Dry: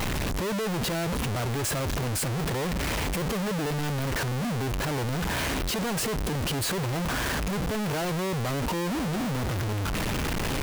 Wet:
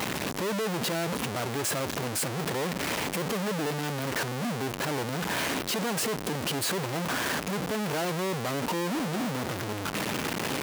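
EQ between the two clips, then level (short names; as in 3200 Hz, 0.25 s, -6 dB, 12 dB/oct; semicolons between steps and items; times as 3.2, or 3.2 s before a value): HPF 180 Hz 12 dB/oct; 0.0 dB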